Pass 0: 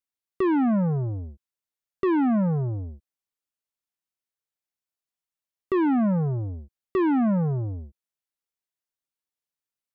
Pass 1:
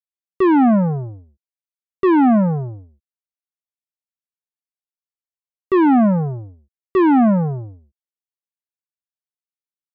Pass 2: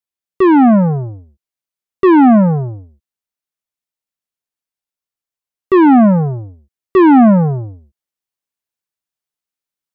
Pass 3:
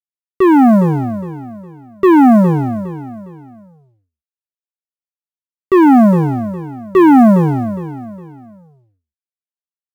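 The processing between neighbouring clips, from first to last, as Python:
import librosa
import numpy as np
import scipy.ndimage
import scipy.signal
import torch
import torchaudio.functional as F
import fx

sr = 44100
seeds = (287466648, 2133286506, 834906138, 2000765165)

y1 = fx.dynamic_eq(x, sr, hz=760.0, q=2.4, threshold_db=-44.0, ratio=4.0, max_db=5)
y1 = fx.upward_expand(y1, sr, threshold_db=-35.0, expansion=2.5)
y1 = y1 * 10.0 ** (8.5 / 20.0)
y2 = fx.rider(y1, sr, range_db=10, speed_s=2.0)
y2 = y2 * 10.0 ** (7.0 / 20.0)
y3 = fx.law_mismatch(y2, sr, coded='A')
y3 = fx.echo_feedback(y3, sr, ms=410, feedback_pct=33, wet_db=-13.0)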